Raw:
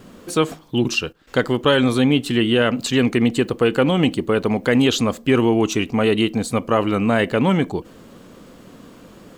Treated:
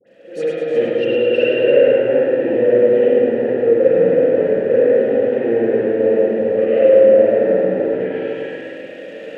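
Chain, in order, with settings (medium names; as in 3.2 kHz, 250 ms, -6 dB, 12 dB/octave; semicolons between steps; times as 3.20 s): backward echo that repeats 190 ms, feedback 48%, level -1 dB; low-pass that closes with the level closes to 480 Hz, closed at -12.5 dBFS; treble shelf 4.3 kHz +8 dB; waveshaping leveller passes 3; level rider gain up to 11.5 dB; vowel filter e; phase dispersion highs, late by 71 ms, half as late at 1.4 kHz; on a send: thinning echo 105 ms, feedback 51%, level -6 dB; on the sum: spring tank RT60 1.9 s, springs 43/49/58 ms, chirp 70 ms, DRR -7 dB; trim -4.5 dB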